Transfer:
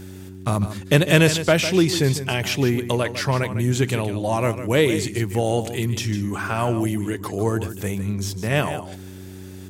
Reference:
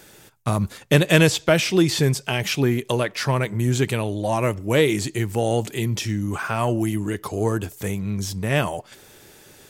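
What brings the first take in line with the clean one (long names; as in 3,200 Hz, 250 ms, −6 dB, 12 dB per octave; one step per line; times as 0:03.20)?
click removal
hum removal 94 Hz, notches 4
echo removal 152 ms −11.5 dB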